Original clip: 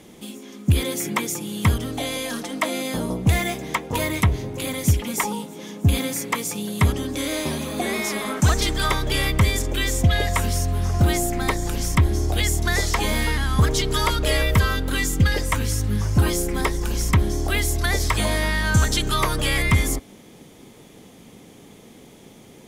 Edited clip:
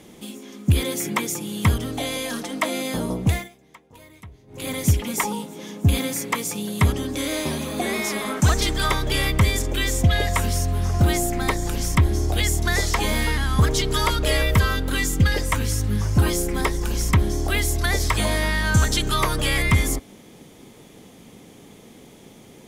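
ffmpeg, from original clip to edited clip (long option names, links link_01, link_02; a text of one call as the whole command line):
ffmpeg -i in.wav -filter_complex "[0:a]asplit=3[link_01][link_02][link_03];[link_01]atrim=end=3.49,asetpts=PTS-STARTPTS,afade=type=out:start_time=3.24:duration=0.25:silence=0.0668344[link_04];[link_02]atrim=start=3.49:end=4.47,asetpts=PTS-STARTPTS,volume=-23.5dB[link_05];[link_03]atrim=start=4.47,asetpts=PTS-STARTPTS,afade=type=in:duration=0.25:silence=0.0668344[link_06];[link_04][link_05][link_06]concat=n=3:v=0:a=1" out.wav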